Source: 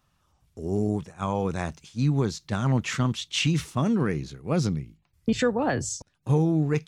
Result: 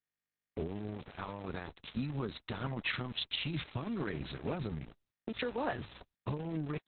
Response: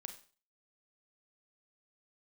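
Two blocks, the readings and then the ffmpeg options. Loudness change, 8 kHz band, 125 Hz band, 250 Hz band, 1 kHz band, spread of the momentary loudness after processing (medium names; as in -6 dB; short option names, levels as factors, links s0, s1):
-12.5 dB, under -40 dB, -15.0 dB, -14.0 dB, -10.5 dB, 9 LU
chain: -af "agate=range=0.501:threshold=0.00251:ratio=16:detection=peak,equalizer=f=130:w=0.38:g=-6,acompressor=threshold=0.0158:ratio=10,alimiter=level_in=2.37:limit=0.0631:level=0:latency=1:release=343,volume=0.422,aeval=exprs='val(0)+0.000398*(sin(2*PI*60*n/s)+sin(2*PI*2*60*n/s)/2+sin(2*PI*3*60*n/s)/3+sin(2*PI*4*60*n/s)/4+sin(2*PI*5*60*n/s)/5)':c=same,aresample=16000,aeval=exprs='val(0)*gte(abs(val(0)),0.00316)':c=same,aresample=44100,volume=2.37" -ar 48000 -c:a libopus -b:a 6k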